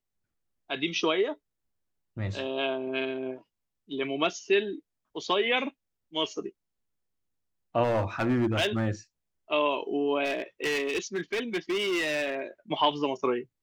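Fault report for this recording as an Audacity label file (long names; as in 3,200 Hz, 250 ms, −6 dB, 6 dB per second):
7.830000	8.870000	clipping −21 dBFS
10.240000	12.400000	clipping −25 dBFS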